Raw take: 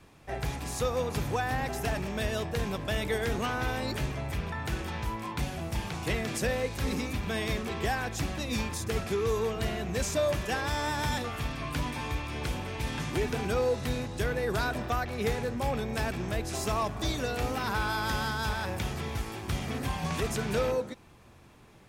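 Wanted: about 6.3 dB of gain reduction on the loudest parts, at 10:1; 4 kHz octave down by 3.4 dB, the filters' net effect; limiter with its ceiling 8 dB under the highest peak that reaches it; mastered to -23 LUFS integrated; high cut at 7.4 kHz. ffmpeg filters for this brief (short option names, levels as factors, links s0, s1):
-af "lowpass=7400,equalizer=f=4000:t=o:g=-4,acompressor=threshold=0.0282:ratio=10,volume=6.31,alimiter=limit=0.2:level=0:latency=1"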